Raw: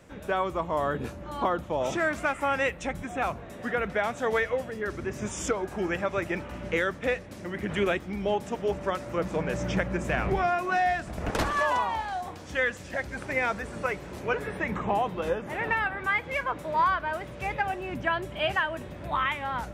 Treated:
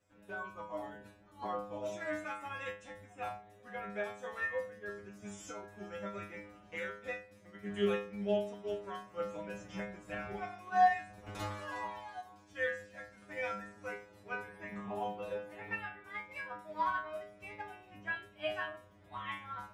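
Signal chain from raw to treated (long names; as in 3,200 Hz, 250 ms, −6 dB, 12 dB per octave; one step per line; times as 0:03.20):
stiff-string resonator 100 Hz, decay 0.77 s, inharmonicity 0.002
expander for the loud parts 1.5 to 1, over −53 dBFS
level +7 dB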